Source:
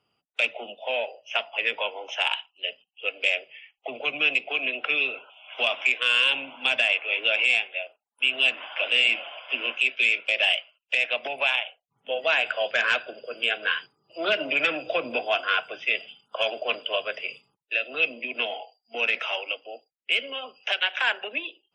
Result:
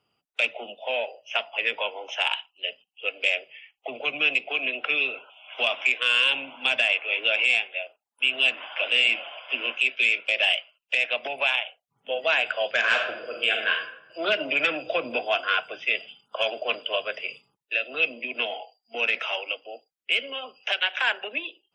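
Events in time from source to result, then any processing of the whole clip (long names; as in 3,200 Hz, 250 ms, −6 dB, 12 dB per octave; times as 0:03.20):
0:12.79–0:13.71: thrown reverb, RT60 0.82 s, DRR 2 dB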